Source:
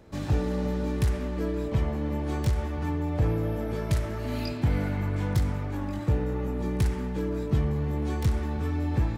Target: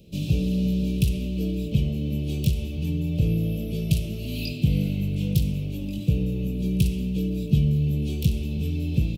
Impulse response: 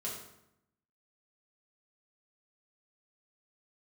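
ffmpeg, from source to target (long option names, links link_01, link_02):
-filter_complex "[0:a]firequalizer=gain_entry='entry(110,0);entry(170,10);entry(250,-2);entry(540,-3);entry(890,-27);entry(1800,-27);entry(2600,9);entry(4600,4);entry(7200,1);entry(13000,10)':delay=0.05:min_phase=1,asplit=2[link_01][link_02];[1:a]atrim=start_sample=2205,asetrate=40572,aresample=44100[link_03];[link_02][link_03]afir=irnorm=-1:irlink=0,volume=-15dB[link_04];[link_01][link_04]amix=inputs=2:normalize=0"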